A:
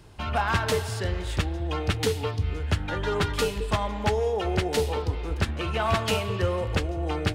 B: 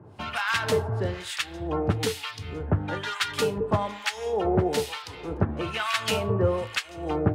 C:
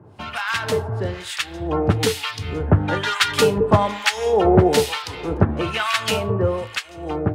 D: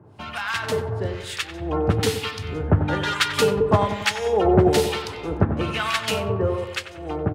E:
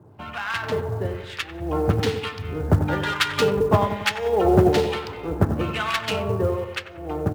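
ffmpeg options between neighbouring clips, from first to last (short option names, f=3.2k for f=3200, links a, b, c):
-filter_complex "[0:a]highpass=f=97:w=0.5412,highpass=f=97:w=1.3066,acrossover=split=1200[a][b];[a]aeval=exprs='val(0)*(1-1/2+1/2*cos(2*PI*1.1*n/s))':c=same[c];[b]aeval=exprs='val(0)*(1-1/2-1/2*cos(2*PI*1.1*n/s))':c=same[d];[c][d]amix=inputs=2:normalize=0,volume=5.5dB"
-af "dynaudnorm=f=210:g=17:m=9dB,volume=2dB"
-filter_complex "[0:a]asplit=2[a][b];[b]adelay=93,lowpass=f=1.8k:p=1,volume=-8.5dB,asplit=2[c][d];[d]adelay=93,lowpass=f=1.8k:p=1,volume=0.55,asplit=2[e][f];[f]adelay=93,lowpass=f=1.8k:p=1,volume=0.55,asplit=2[g][h];[h]adelay=93,lowpass=f=1.8k:p=1,volume=0.55,asplit=2[i][j];[j]adelay=93,lowpass=f=1.8k:p=1,volume=0.55,asplit=2[k][l];[l]adelay=93,lowpass=f=1.8k:p=1,volume=0.55,asplit=2[m][n];[n]adelay=93,lowpass=f=1.8k:p=1,volume=0.55[o];[a][c][e][g][i][k][m][o]amix=inputs=8:normalize=0,volume=-3dB"
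-af "bandreject=f=218.1:t=h:w=4,bandreject=f=436.2:t=h:w=4,bandreject=f=654.3:t=h:w=4,bandreject=f=872.4:t=h:w=4,bandreject=f=1.0905k:t=h:w=4,bandreject=f=1.3086k:t=h:w=4,bandreject=f=1.5267k:t=h:w=4,bandreject=f=1.7448k:t=h:w=4,bandreject=f=1.9629k:t=h:w=4,bandreject=f=2.181k:t=h:w=4,bandreject=f=2.3991k:t=h:w=4,bandreject=f=2.6172k:t=h:w=4,bandreject=f=2.8353k:t=h:w=4,bandreject=f=3.0534k:t=h:w=4,bandreject=f=3.2715k:t=h:w=4,bandreject=f=3.4896k:t=h:w=4,bandreject=f=3.7077k:t=h:w=4,bandreject=f=3.9258k:t=h:w=4,bandreject=f=4.1439k:t=h:w=4,bandreject=f=4.362k:t=h:w=4,bandreject=f=4.5801k:t=h:w=4,bandreject=f=4.7982k:t=h:w=4,bandreject=f=5.0163k:t=h:w=4,bandreject=f=5.2344k:t=h:w=4,bandreject=f=5.4525k:t=h:w=4,bandreject=f=5.6706k:t=h:w=4,bandreject=f=5.8887k:t=h:w=4,bandreject=f=6.1068k:t=h:w=4,bandreject=f=6.3249k:t=h:w=4,bandreject=f=6.543k:t=h:w=4,bandreject=f=6.7611k:t=h:w=4,bandreject=f=6.9792k:t=h:w=4,bandreject=f=7.1973k:t=h:w=4,bandreject=f=7.4154k:t=h:w=4,bandreject=f=7.6335k:t=h:w=4,bandreject=f=7.8516k:t=h:w=4,bandreject=f=8.0697k:t=h:w=4,bandreject=f=8.2878k:t=h:w=4,bandreject=f=8.5059k:t=h:w=4,bandreject=f=8.724k:t=h:w=4,adynamicsmooth=sensitivity=2:basefreq=2.4k,acrusher=bits=8:mode=log:mix=0:aa=0.000001"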